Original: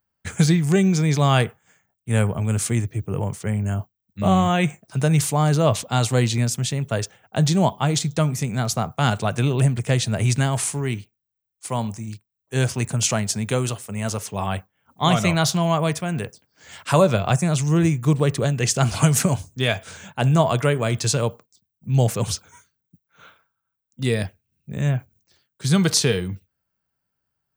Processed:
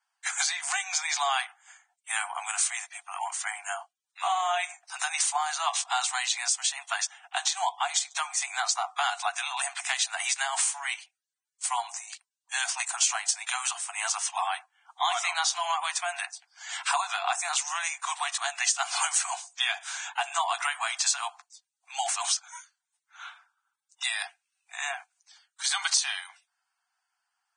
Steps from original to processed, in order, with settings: Chebyshev high-pass 700 Hz, order 10; compression 3:1, threshold -33 dBFS, peak gain reduction 13 dB; trim +5.5 dB; Vorbis 16 kbps 22.05 kHz

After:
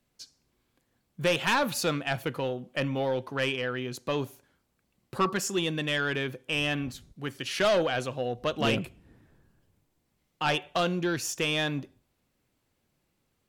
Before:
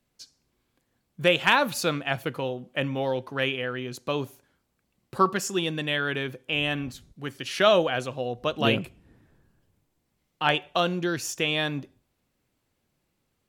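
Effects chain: saturation -19 dBFS, distortion -10 dB

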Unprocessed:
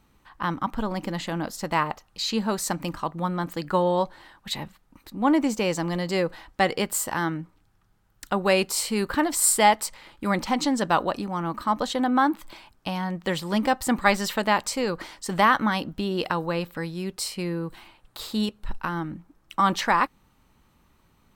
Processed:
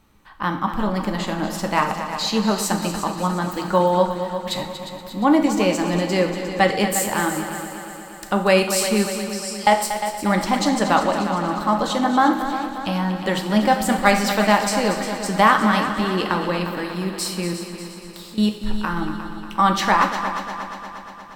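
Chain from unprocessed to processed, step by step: 9.08–9.67 s: band-pass filter 5.3 kHz, Q 7.4; 17.53–18.38 s: compression, threshold -44 dBFS, peak gain reduction 18.5 dB; multi-head delay 118 ms, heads second and third, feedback 60%, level -11 dB; on a send at -4.5 dB: reverberation, pre-delay 3 ms; on the sum: trim +3 dB

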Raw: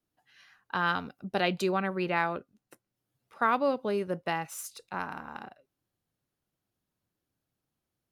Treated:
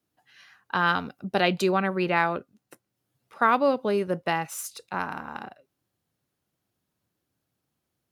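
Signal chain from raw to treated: high-pass 61 Hz; trim +5 dB

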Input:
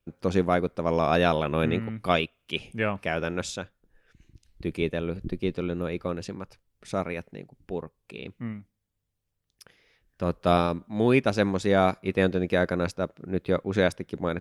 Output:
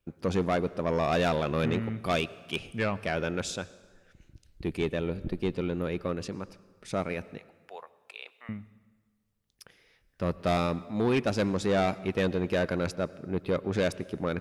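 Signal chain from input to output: 7.38–8.49 s: high-pass 670 Hz 24 dB/octave; saturation -20 dBFS, distortion -10 dB; plate-style reverb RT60 1.5 s, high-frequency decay 0.75×, pre-delay 80 ms, DRR 18.5 dB

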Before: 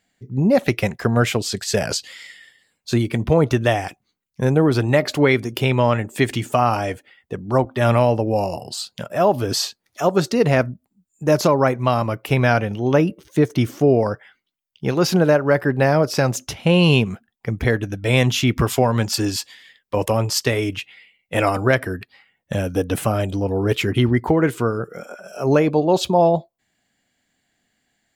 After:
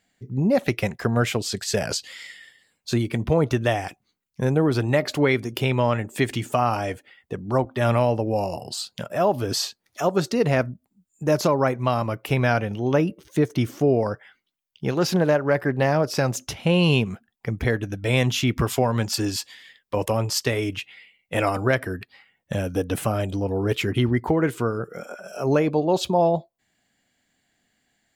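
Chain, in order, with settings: in parallel at -3 dB: compression, threshold -30 dBFS, peak gain reduction 18 dB; 14.91–16.15 s: on the sum: loudspeaker Doppler distortion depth 0.14 ms; trim -5 dB

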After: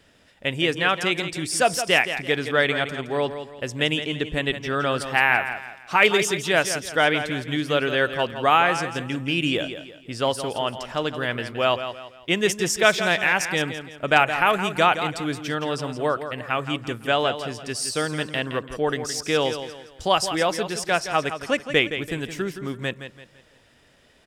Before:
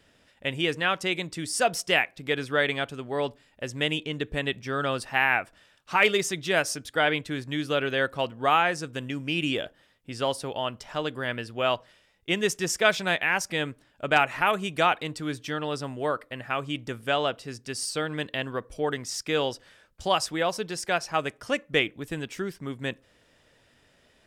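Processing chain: feedback delay 168 ms, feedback 36%, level -10 dB; trim +4 dB

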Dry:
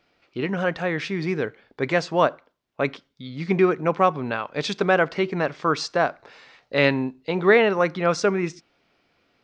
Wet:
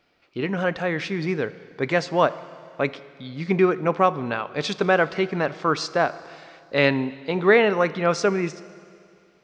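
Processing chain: Schroeder reverb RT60 2.4 s, combs from 26 ms, DRR 16.5 dB

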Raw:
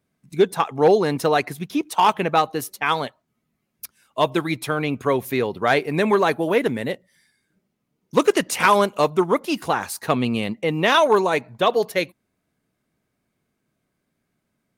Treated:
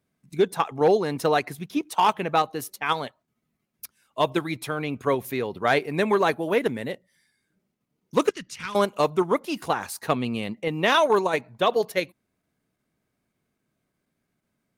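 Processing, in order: 8.29–8.75 s: FFT filter 110 Hz 0 dB, 710 Hz -26 dB, 1.3 kHz -12 dB, 5.6 kHz -6 dB, 13 kHz -21 dB; in parallel at -3 dB: level held to a coarse grid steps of 19 dB; on the sum: trim -6.5 dB

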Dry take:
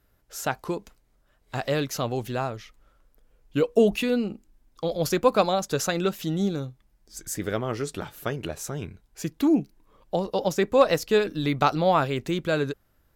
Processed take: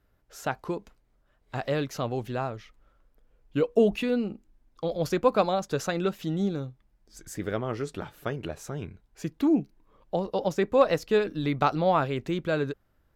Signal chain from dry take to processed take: treble shelf 4.7 kHz -10.5 dB; trim -2 dB

